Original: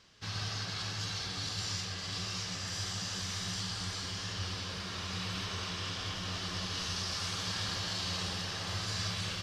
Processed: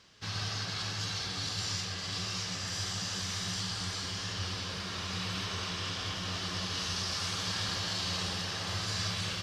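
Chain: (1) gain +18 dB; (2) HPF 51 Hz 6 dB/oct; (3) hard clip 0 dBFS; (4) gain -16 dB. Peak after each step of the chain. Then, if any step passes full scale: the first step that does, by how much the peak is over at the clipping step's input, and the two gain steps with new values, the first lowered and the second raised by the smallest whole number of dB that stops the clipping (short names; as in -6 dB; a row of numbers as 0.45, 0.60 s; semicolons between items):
-6.0, -5.5, -5.5, -21.5 dBFS; no overload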